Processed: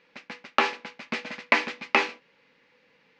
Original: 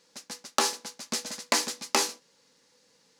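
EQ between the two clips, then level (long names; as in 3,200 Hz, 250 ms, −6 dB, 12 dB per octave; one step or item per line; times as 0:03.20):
low-pass with resonance 2,400 Hz, resonance Q 3.1
high-frequency loss of the air 66 metres
+2.5 dB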